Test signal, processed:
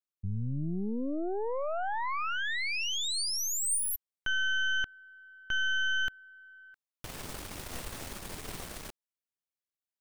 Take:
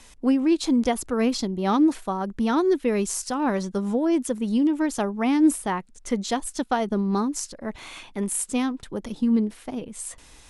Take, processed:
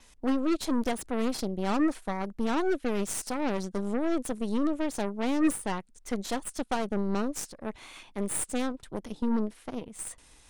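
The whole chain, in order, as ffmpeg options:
-af "aeval=exprs='0.316*(cos(1*acos(clip(val(0)/0.316,-1,1)))-cos(1*PI/2))+0.00316*(cos(3*acos(clip(val(0)/0.316,-1,1)))-cos(3*PI/2))+0.0447*(cos(8*acos(clip(val(0)/0.316,-1,1)))-cos(8*PI/2))':c=same,adynamicequalizer=threshold=0.00282:dfrequency=8900:dqfactor=5.7:tfrequency=8900:tqfactor=5.7:attack=5:release=100:ratio=0.375:range=3:mode=boostabove:tftype=bell,volume=-7dB"

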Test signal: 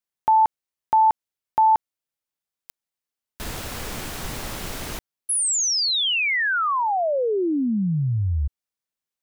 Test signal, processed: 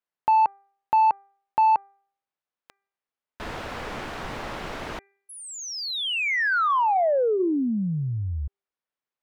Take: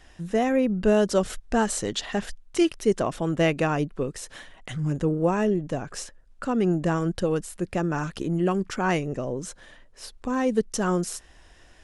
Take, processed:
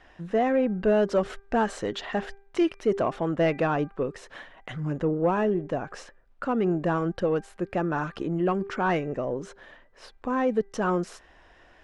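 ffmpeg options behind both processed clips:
-filter_complex "[0:a]highshelf=f=6.7k:g=-12,bandreject=f=396.1:t=h:w=4,bandreject=f=792.2:t=h:w=4,bandreject=f=1.1883k:t=h:w=4,bandreject=f=1.5844k:t=h:w=4,bandreject=f=1.9805k:t=h:w=4,bandreject=f=2.3766k:t=h:w=4,acontrast=83,asplit=2[a][b];[b]highpass=f=720:p=1,volume=12dB,asoftclip=type=tanh:threshold=-4dB[c];[a][c]amix=inputs=2:normalize=0,lowpass=f=1.3k:p=1,volume=-6dB,volume=-8dB"

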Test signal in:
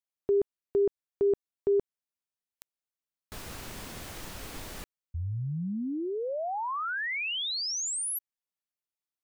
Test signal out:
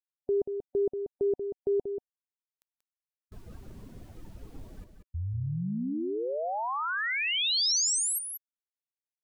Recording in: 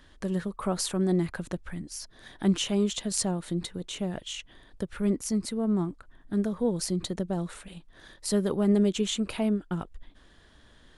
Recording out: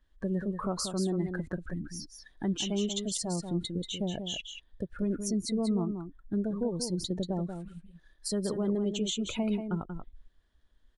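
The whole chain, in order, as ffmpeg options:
-af "afftdn=nr=21:nf=-37,adynamicequalizer=threshold=0.00501:dfrequency=5400:dqfactor=0.74:tfrequency=5400:tqfactor=0.74:attack=5:release=100:ratio=0.417:range=3:mode=boostabove:tftype=bell,alimiter=limit=-22.5dB:level=0:latency=1:release=230,aecho=1:1:185:0.422"

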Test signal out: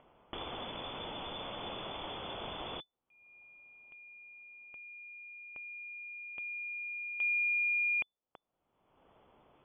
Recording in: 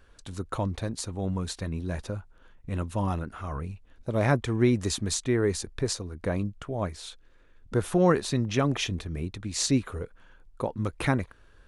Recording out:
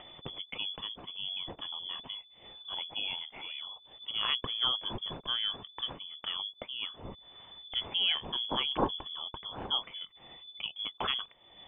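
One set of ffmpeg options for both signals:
-af "acompressor=mode=upward:threshold=-31dB:ratio=2.5,aexciter=amount=12.7:drive=6.2:freq=2.7k,lowpass=f=3k:t=q:w=0.5098,lowpass=f=3k:t=q:w=0.6013,lowpass=f=3k:t=q:w=0.9,lowpass=f=3k:t=q:w=2.563,afreqshift=-3500,volume=-9dB"

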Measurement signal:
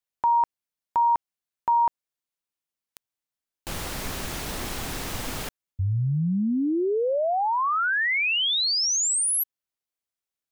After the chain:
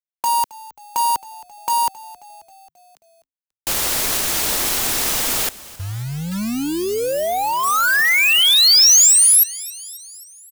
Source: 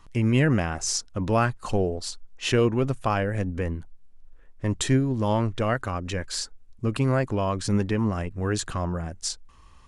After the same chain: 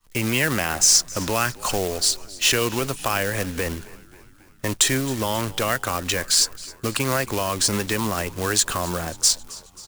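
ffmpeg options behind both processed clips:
-filter_complex "[0:a]acrossover=split=290|620|1400|5200[a][b][c][d][e];[a]acompressor=threshold=-58dB:ratio=1.5[f];[b]acompressor=threshold=-38dB:ratio=3[g];[c]acompressor=threshold=-34dB:ratio=4[h];[d]acompressor=threshold=-26dB:ratio=2.5[i];[e]acompressor=threshold=-29dB:ratio=4[j];[f][g][h][i][j]amix=inputs=5:normalize=0,asplit=2[k][l];[l]alimiter=level_in=1.5dB:limit=-24dB:level=0:latency=1:release=61,volume=-1.5dB,volume=1dB[m];[k][m]amix=inputs=2:normalize=0,acrusher=bits=3:mode=log:mix=0:aa=0.000001,highshelf=f=4k:g=10.5,agate=range=-33dB:threshold=-34dB:ratio=3:release=325:detection=peak,asplit=2[n][o];[o]asplit=5[p][q][r][s][t];[p]adelay=268,afreqshift=-55,volume=-20dB[u];[q]adelay=536,afreqshift=-110,volume=-24.4dB[v];[r]adelay=804,afreqshift=-165,volume=-28.9dB[w];[s]adelay=1072,afreqshift=-220,volume=-33.3dB[x];[t]adelay=1340,afreqshift=-275,volume=-37.7dB[y];[u][v][w][x][y]amix=inputs=5:normalize=0[z];[n][z]amix=inputs=2:normalize=0,volume=2dB"

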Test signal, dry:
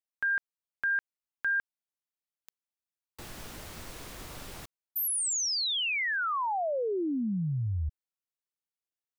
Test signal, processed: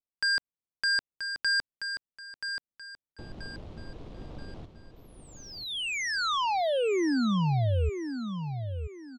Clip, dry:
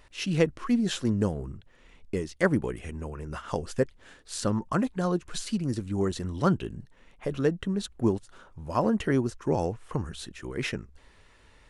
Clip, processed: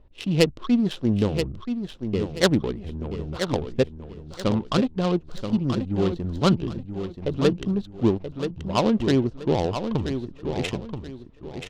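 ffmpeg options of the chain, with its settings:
-af "adynamicsmooth=sensitivity=2:basefreq=550,highshelf=f=2.5k:t=q:w=1.5:g=10.5,aecho=1:1:980|1960|2940|3920:0.398|0.119|0.0358|0.0107,volume=4.5dB"

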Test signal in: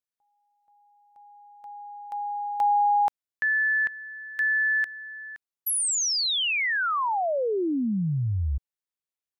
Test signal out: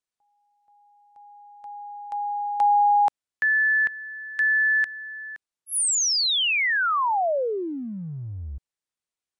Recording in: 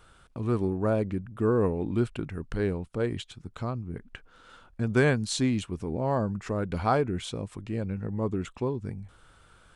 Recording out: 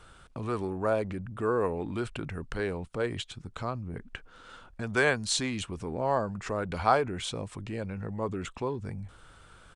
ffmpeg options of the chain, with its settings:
-filter_complex "[0:a]acrossover=split=480[a][b];[a]acompressor=threshold=-36dB:ratio=6:attack=0.32:release=43:knee=2.83:detection=peak[c];[c][b]amix=inputs=2:normalize=0,aresample=22050,aresample=44100,volume=3dB"

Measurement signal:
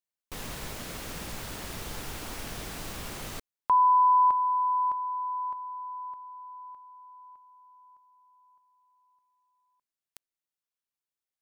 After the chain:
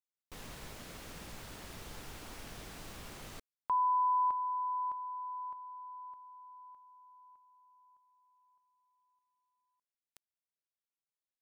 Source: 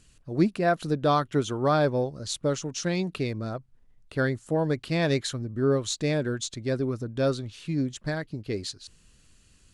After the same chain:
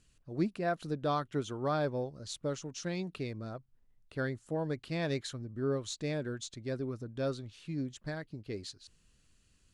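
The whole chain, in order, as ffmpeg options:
-af "highshelf=f=9.5k:g=-4,volume=-9dB"

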